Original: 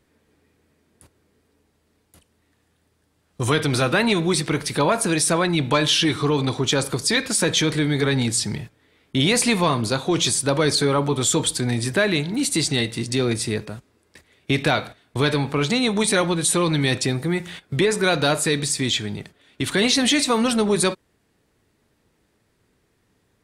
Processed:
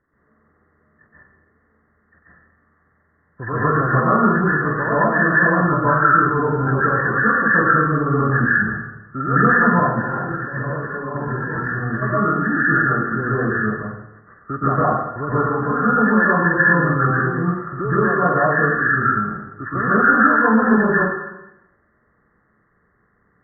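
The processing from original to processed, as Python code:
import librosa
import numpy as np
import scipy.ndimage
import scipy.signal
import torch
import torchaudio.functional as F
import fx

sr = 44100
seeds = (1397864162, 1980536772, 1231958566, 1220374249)

y = fx.freq_compress(x, sr, knee_hz=1000.0, ratio=4.0)
y = fx.over_compress(y, sr, threshold_db=-27.0, ratio=-1.0, at=(9.73, 12.01), fade=0.02)
y = fx.rev_plate(y, sr, seeds[0], rt60_s=0.91, hf_ratio=0.9, predelay_ms=110, drr_db=-9.0)
y = y * librosa.db_to_amplitude(-7.5)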